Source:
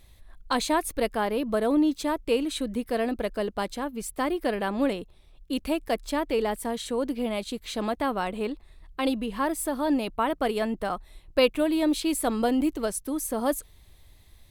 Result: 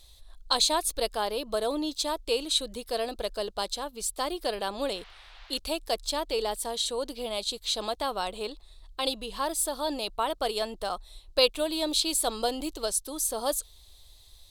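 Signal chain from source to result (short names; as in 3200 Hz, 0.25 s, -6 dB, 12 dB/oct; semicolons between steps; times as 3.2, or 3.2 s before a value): graphic EQ 125/250/2000/4000/8000 Hz -12/-11/-10/+11/+5 dB; 4.94–5.57 band noise 640–4100 Hz -53 dBFS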